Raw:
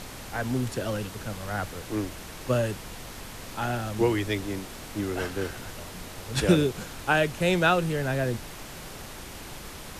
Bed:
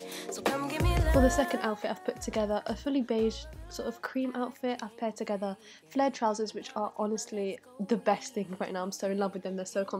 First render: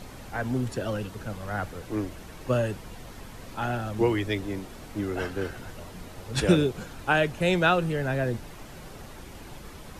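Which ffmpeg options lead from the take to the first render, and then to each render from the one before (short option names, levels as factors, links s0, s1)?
-af "afftdn=nr=8:nf=-42"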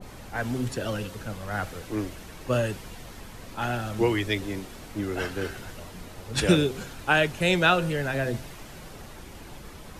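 -af "bandreject=f=131:t=h:w=4,bandreject=f=262:t=h:w=4,bandreject=f=393:t=h:w=4,bandreject=f=524:t=h:w=4,bandreject=f=655:t=h:w=4,bandreject=f=786:t=h:w=4,bandreject=f=917:t=h:w=4,bandreject=f=1048:t=h:w=4,bandreject=f=1179:t=h:w=4,bandreject=f=1310:t=h:w=4,bandreject=f=1441:t=h:w=4,adynamicequalizer=threshold=0.01:dfrequency=1600:dqfactor=0.7:tfrequency=1600:tqfactor=0.7:attack=5:release=100:ratio=0.375:range=2.5:mode=boostabove:tftype=highshelf"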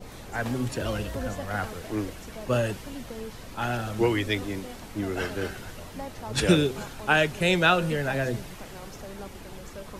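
-filter_complex "[1:a]volume=0.282[s0];[0:a][s0]amix=inputs=2:normalize=0"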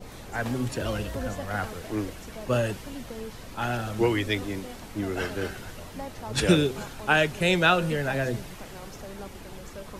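-af anull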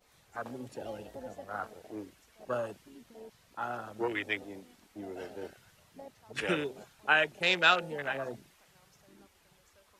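-af "afwtdn=0.0355,highpass=f=1200:p=1"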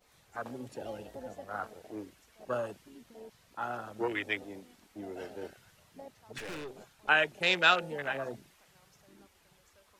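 -filter_complex "[0:a]asettb=1/sr,asplit=3[s0][s1][s2];[s0]atrim=end=6.384[s3];[s1]atrim=start=6.38:end=7.09,asetpts=PTS-STARTPTS,afade=t=in:d=0.004:c=qsin,afade=t=out:st=0.706:d=0.004:c=qsin,aeval=exprs='(tanh(89.1*val(0)+0.45)-tanh(0.45))/89.1':c=same[s4];[s2]atrim=start=7.086[s5];[s3][s4]acrossfade=d=0.004:c1=hsin:c2=qsin[s6];[s6][s5]acrossfade=d=0.004:c1=qsin:c2=hsin"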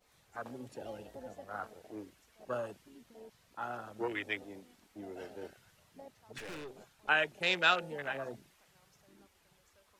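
-af "volume=0.668"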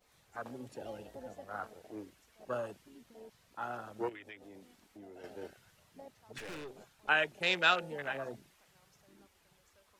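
-filter_complex "[0:a]asettb=1/sr,asplit=3[s0][s1][s2];[s0]atrim=end=4.094[s3];[s1]atrim=start=4.09:end=5.24,asetpts=PTS-STARTPTS,afade=t=in:d=0.004:c=qsin,afade=t=out:st=1.146:d=0.004:c=qsin,acompressor=threshold=0.00316:ratio=3:attack=3.2:release=140:knee=1:detection=peak[s4];[s2]atrim=start=5.236[s5];[s3][s4]acrossfade=d=0.004:c1=hsin:c2=qsin[s6];[s6][s5]acrossfade=d=0.004:c1=qsin:c2=hsin"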